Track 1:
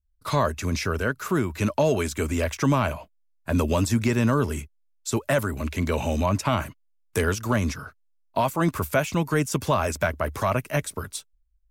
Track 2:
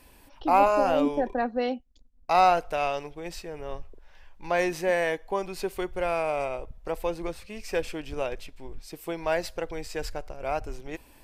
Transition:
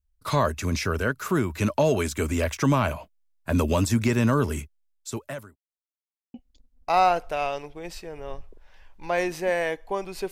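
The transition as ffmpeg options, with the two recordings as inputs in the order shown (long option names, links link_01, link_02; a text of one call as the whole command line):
ffmpeg -i cue0.wav -i cue1.wav -filter_complex "[0:a]apad=whole_dur=10.31,atrim=end=10.31,asplit=2[link_01][link_02];[link_01]atrim=end=5.56,asetpts=PTS-STARTPTS,afade=type=out:start_time=4.6:duration=0.96[link_03];[link_02]atrim=start=5.56:end=6.34,asetpts=PTS-STARTPTS,volume=0[link_04];[1:a]atrim=start=1.75:end=5.72,asetpts=PTS-STARTPTS,afade=type=in:duration=0.004:curve=hsin[link_05];[link_03][link_04][link_05]concat=n=3:v=0:a=1" out.wav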